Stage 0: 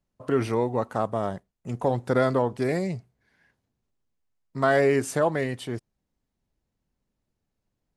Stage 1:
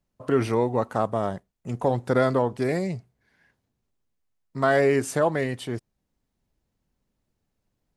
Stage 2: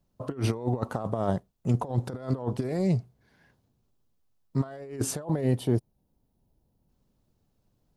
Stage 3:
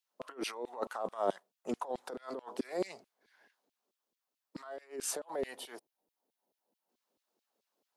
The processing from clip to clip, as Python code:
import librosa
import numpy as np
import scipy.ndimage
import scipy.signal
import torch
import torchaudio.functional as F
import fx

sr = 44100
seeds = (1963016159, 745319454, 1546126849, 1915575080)

y1 = fx.rider(x, sr, range_db=3, speed_s=2.0)
y2 = fx.over_compress(y1, sr, threshold_db=-28.0, ratio=-0.5)
y2 = fx.spec_box(y2, sr, start_s=5.24, length_s=1.65, low_hz=1000.0, high_hz=8900.0, gain_db=-6)
y2 = fx.graphic_eq(y2, sr, hz=(125, 2000, 8000), db=(3, -8, -4))
y3 = scipy.signal.sosfilt(scipy.signal.butter(4, 190.0, 'highpass', fs=sr, output='sos'), y2)
y3 = fx.filter_lfo_highpass(y3, sr, shape='saw_down', hz=4.6, low_hz=290.0, high_hz=3100.0, q=1.4)
y3 = y3 * 10.0 ** (-3.5 / 20.0)